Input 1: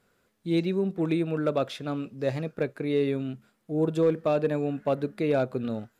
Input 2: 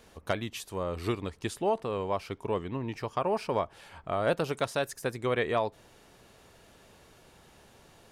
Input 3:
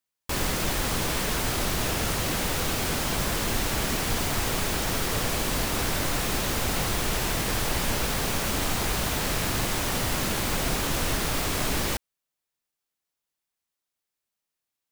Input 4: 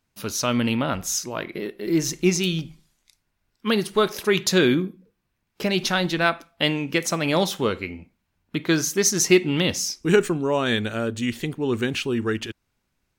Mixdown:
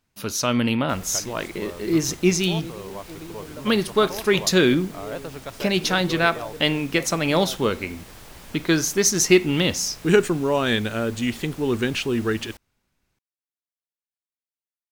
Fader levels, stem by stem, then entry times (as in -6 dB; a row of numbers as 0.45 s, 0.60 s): -13.5 dB, -6.0 dB, -17.0 dB, +1.0 dB; 2.10 s, 0.85 s, 0.60 s, 0.00 s